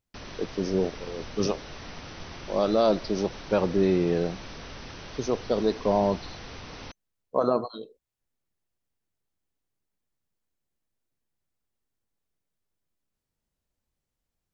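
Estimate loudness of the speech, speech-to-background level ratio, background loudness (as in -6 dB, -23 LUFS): -27.0 LUFS, 14.5 dB, -41.5 LUFS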